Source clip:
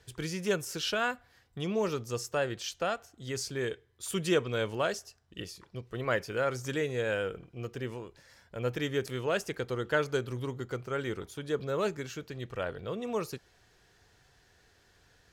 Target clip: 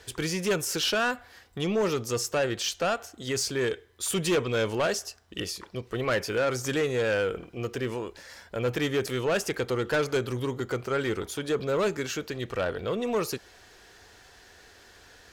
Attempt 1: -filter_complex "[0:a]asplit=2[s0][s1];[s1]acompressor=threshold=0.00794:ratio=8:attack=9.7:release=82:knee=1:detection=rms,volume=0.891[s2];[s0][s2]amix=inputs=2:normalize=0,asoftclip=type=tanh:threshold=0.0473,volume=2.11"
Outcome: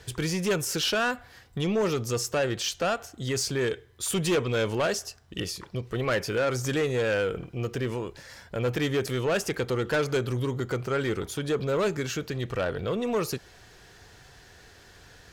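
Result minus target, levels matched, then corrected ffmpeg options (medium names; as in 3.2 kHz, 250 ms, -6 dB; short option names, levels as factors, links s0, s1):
125 Hz band +3.5 dB
-filter_complex "[0:a]asplit=2[s0][s1];[s1]acompressor=threshold=0.00794:ratio=8:attack=9.7:release=82:knee=1:detection=rms,highpass=f=130:w=0.5412,highpass=f=130:w=1.3066,volume=0.891[s2];[s0][s2]amix=inputs=2:normalize=0,asoftclip=type=tanh:threshold=0.0473,volume=2.11"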